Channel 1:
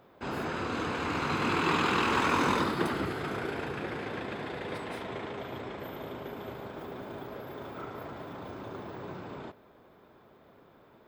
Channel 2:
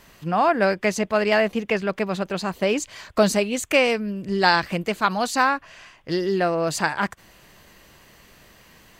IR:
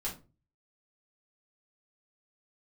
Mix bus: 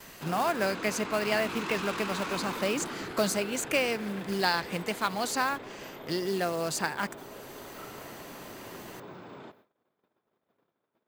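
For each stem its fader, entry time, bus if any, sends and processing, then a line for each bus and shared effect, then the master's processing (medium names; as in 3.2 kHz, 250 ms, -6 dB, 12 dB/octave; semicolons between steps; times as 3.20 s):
-3.5 dB, 0.00 s, no send, high-pass 130 Hz 12 dB/octave; treble shelf 2.1 kHz +3 dB; saturation -29.5 dBFS, distortion -8 dB
-9.0 dB, 0.00 s, no send, treble shelf 4.7 kHz +9.5 dB; short-mantissa float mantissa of 2-bit; three bands compressed up and down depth 40%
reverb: none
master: gate -58 dBFS, range -23 dB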